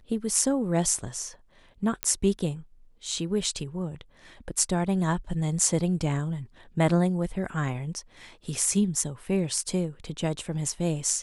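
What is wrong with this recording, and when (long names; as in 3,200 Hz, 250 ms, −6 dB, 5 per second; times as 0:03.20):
0:02.03: click −8 dBFS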